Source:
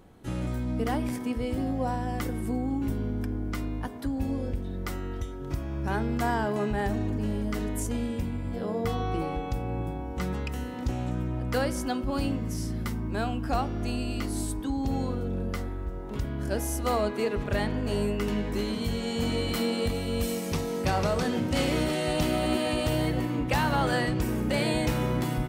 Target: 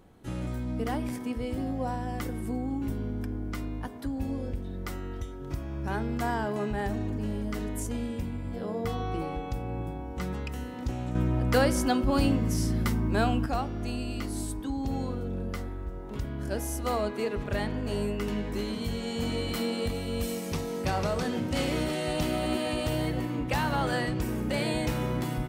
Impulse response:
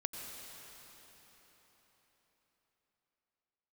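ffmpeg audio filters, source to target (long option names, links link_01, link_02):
-filter_complex "[0:a]asettb=1/sr,asplit=3[link_01][link_02][link_03];[link_01]atrim=end=11.154[link_04];[link_02]atrim=start=11.15:end=13.46,asetpts=PTS-STARTPTS,afade=type=in:duration=0.004:curve=qsin,afade=type=out:start_time=2.306:duration=0.004:curve=qsin,acontrast=75[link_05];[link_03]atrim=start=13.456[link_06];[link_04][link_05]acrossfade=duration=0.004:curve1=hsin:curve2=qsin[link_07];[link_07][link_06]acrossfade=duration=0.004:curve1=qsin:curve2=hsin,volume=-2.5dB"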